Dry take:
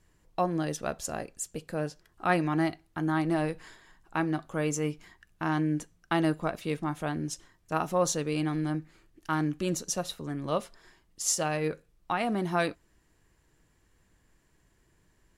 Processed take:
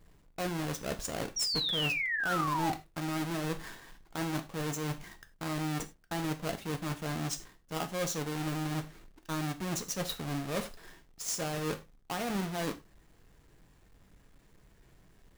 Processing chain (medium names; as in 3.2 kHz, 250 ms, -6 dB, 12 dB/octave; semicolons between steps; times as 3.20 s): square wave that keeps the level; reverse; compression 6:1, threshold -33 dBFS, peak gain reduction 16 dB; reverse; painted sound fall, 1.36–2.73 s, 750–5800 Hz -33 dBFS; gated-style reverb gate 120 ms falling, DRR 8 dB